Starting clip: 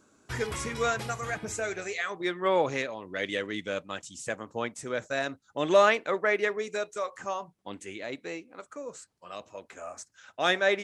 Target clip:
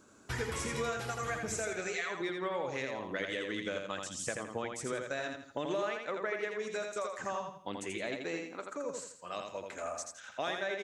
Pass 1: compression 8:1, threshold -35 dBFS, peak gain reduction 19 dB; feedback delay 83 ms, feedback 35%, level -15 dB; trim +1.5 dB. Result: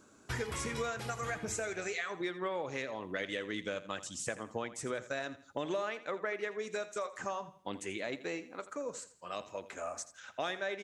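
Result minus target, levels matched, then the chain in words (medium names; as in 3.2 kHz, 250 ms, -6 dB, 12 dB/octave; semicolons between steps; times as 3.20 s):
echo-to-direct -10.5 dB
compression 8:1, threshold -35 dBFS, peak gain reduction 19 dB; feedback delay 83 ms, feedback 35%, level -4.5 dB; trim +1.5 dB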